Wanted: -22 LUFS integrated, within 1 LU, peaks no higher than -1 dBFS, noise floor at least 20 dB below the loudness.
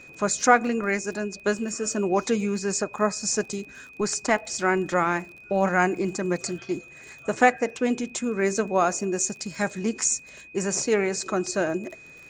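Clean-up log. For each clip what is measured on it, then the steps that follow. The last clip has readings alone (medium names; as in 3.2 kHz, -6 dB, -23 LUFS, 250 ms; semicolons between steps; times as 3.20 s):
tick rate 36 per s; steady tone 2.5 kHz; tone level -45 dBFS; loudness -25.5 LUFS; peak level -3.0 dBFS; loudness target -22.0 LUFS
-> de-click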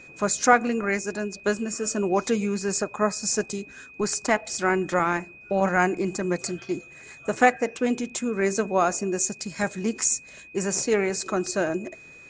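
tick rate 0 per s; steady tone 2.5 kHz; tone level -45 dBFS
-> band-stop 2.5 kHz, Q 30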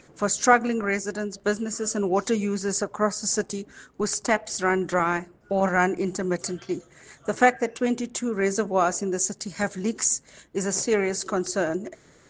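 steady tone not found; loudness -25.5 LUFS; peak level -3.5 dBFS; loudness target -22.0 LUFS
-> trim +3.5 dB; peak limiter -1 dBFS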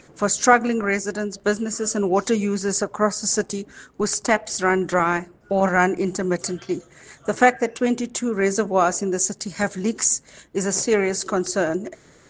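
loudness -22.0 LUFS; peak level -1.0 dBFS; noise floor -52 dBFS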